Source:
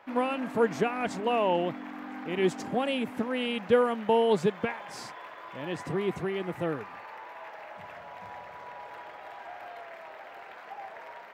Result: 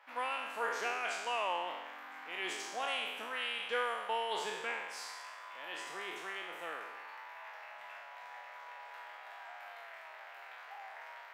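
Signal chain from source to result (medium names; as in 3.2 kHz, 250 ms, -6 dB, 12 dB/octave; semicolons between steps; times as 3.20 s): spectral sustain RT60 1.13 s; high-pass 1 kHz 12 dB/octave; trim -4.5 dB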